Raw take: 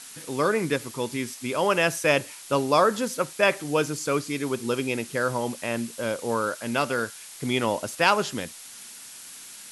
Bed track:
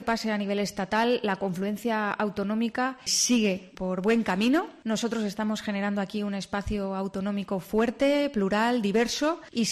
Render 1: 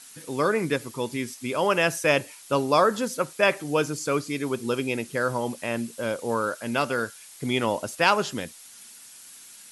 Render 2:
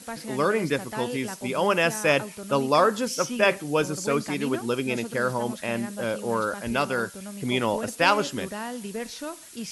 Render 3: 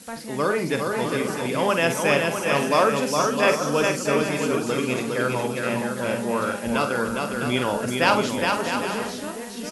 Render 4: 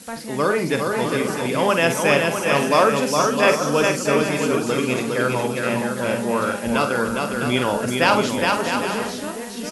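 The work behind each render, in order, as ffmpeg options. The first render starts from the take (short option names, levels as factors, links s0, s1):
-af "afftdn=nr=6:nf=-44"
-filter_complex "[1:a]volume=0.335[s0];[0:a][s0]amix=inputs=2:normalize=0"
-filter_complex "[0:a]asplit=2[s0][s1];[s1]adelay=48,volume=0.376[s2];[s0][s2]amix=inputs=2:normalize=0,asplit=2[s3][s4];[s4]aecho=0:1:410|656|803.6|892.2|945.3:0.631|0.398|0.251|0.158|0.1[s5];[s3][s5]amix=inputs=2:normalize=0"
-af "volume=1.41,alimiter=limit=0.794:level=0:latency=1"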